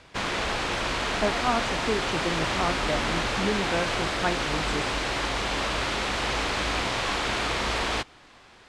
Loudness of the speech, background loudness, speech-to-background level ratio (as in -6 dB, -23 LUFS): -31.0 LUFS, -27.0 LUFS, -4.0 dB